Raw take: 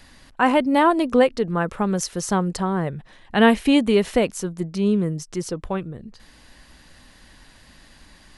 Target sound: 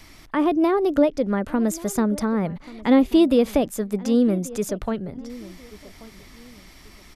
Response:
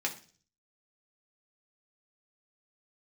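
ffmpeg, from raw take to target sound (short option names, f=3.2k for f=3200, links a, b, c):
-filter_complex "[0:a]acrossover=split=470[a][b];[b]acompressor=threshold=-32dB:ratio=4[c];[a][c]amix=inputs=2:normalize=0,asetrate=51597,aresample=44100,asplit=2[d][e];[e]adelay=1134,lowpass=f=1.6k:p=1,volume=-19dB,asplit=2[f][g];[g]adelay=1134,lowpass=f=1.6k:p=1,volume=0.29[h];[d][f][h]amix=inputs=3:normalize=0,volume=2dB"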